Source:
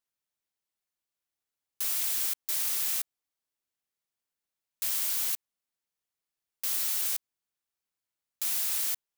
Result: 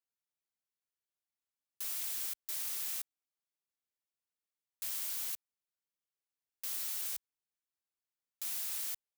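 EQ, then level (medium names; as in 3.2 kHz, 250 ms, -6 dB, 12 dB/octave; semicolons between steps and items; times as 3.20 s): high-pass 42 Hz; -8.5 dB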